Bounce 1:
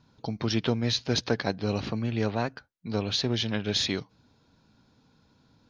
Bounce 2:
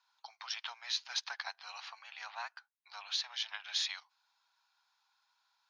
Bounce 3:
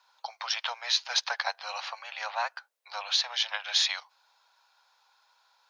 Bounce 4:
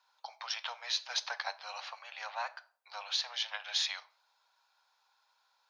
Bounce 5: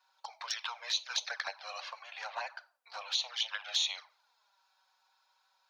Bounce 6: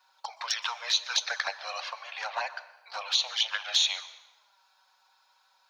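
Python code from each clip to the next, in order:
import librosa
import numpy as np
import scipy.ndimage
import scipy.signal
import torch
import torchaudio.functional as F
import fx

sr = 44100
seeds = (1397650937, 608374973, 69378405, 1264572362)

y1 = scipy.signal.sosfilt(scipy.signal.butter(8, 820.0, 'highpass', fs=sr, output='sos'), x)
y1 = F.gain(torch.from_numpy(y1), -6.5).numpy()
y2 = fx.highpass_res(y1, sr, hz=520.0, q=5.7)
y2 = F.gain(torch.from_numpy(y2), 9.0).numpy()
y3 = fx.room_shoebox(y2, sr, seeds[0], volume_m3=560.0, walls='furnished', distance_m=0.47)
y3 = F.gain(torch.from_numpy(y3), -7.0).numpy()
y4 = fx.env_flanger(y3, sr, rest_ms=5.5, full_db=-31.5)
y4 = F.gain(torch.from_numpy(y4), 3.5).numpy()
y5 = fx.rev_plate(y4, sr, seeds[1], rt60_s=0.97, hf_ratio=0.85, predelay_ms=110, drr_db=16.0)
y5 = F.gain(torch.from_numpy(y5), 6.5).numpy()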